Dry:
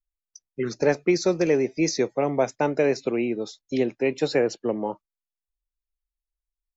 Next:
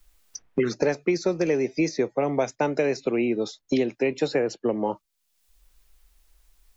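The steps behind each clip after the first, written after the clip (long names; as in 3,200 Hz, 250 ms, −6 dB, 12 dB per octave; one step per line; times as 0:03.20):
multiband upward and downward compressor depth 100%
level −1.5 dB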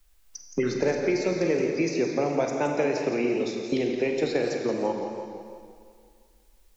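four-comb reverb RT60 2.1 s, combs from 32 ms, DRR 3 dB
feedback echo with a swinging delay time 170 ms, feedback 49%, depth 137 cents, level −9 dB
level −3 dB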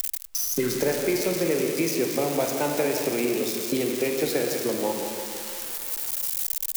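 spike at every zero crossing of −19.5 dBFS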